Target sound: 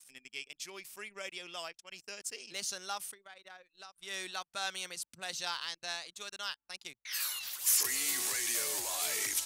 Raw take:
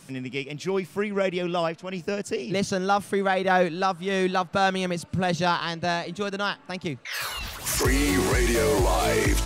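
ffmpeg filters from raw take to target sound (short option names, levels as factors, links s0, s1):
-filter_complex "[0:a]aeval=exprs='val(0)+0.002*(sin(2*PI*50*n/s)+sin(2*PI*2*50*n/s)/2+sin(2*PI*3*50*n/s)/3+sin(2*PI*4*50*n/s)/4+sin(2*PI*5*50*n/s)/5)':c=same,asettb=1/sr,asplit=3[s0][s1][s2];[s0]atrim=end=3.024[s3];[s1]atrim=start=3.02:end=3.96,asetpts=PTS-STARTPTS,afade=t=in:d=0.004:c=qsin,afade=t=out:st=0.936:d=0.004:c=qsin,acompressor=threshold=0.0282:ratio=16[s4];[s2]atrim=start=3.956[s5];[s3][s4]acrossfade=d=0.004:c1=hsin:c2=qsin[s6];[s6][s5]acrossfade=d=0.004:c1=qsin:c2=hsin,aderivative,anlmdn=0.00158"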